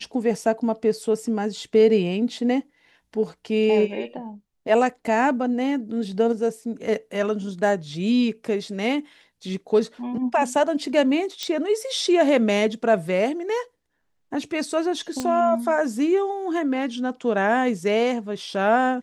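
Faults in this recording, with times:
0:11.43: click −14 dBFS
0:15.20: click −12 dBFS

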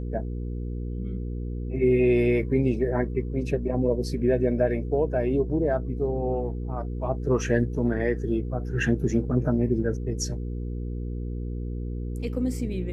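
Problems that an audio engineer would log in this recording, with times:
mains hum 60 Hz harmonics 8 −31 dBFS

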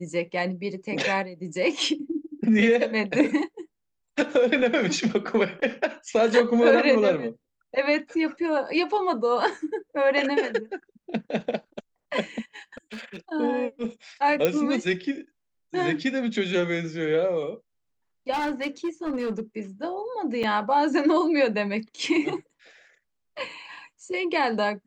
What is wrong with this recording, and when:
0:12.56–0:13.17: clipping −32.5 dBFS
0:14.45: click −8 dBFS
0:18.32–0:19.60: clipping −23.5 dBFS
0:20.43–0:20.44: drop-out 5.9 ms

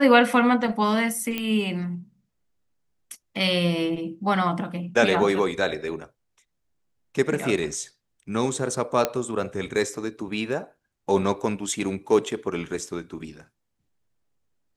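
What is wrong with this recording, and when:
0:01.38: click −13 dBFS
0:09.05: click −7 dBFS

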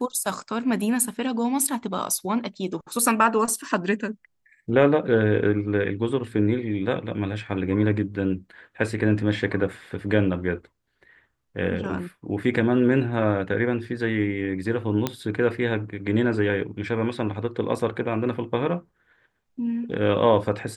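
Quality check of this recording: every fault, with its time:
0:15.07: click −9 dBFS

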